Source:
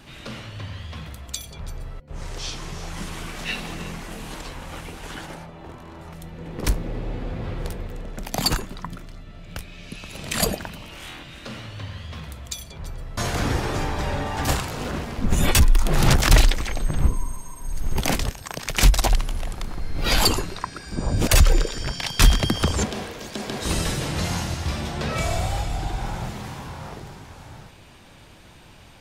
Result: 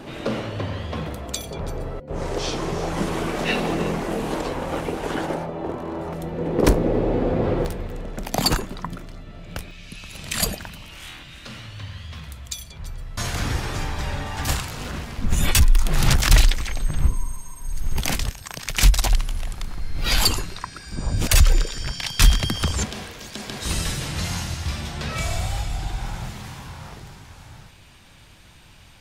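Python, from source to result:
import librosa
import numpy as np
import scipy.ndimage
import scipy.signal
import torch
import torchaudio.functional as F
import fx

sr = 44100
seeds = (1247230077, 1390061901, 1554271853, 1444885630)

y = fx.peak_eq(x, sr, hz=440.0, db=fx.steps((0.0, 14.5), (7.65, 3.5), (9.71, -7.5)), octaves=2.7)
y = y * librosa.db_to_amplitude(1.0)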